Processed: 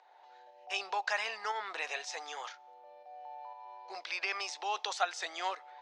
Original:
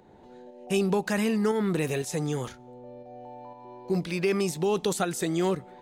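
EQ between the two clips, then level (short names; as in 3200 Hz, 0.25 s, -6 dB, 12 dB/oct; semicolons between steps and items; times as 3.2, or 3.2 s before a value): elliptic band-pass 730–5600 Hz, stop band 60 dB; 0.0 dB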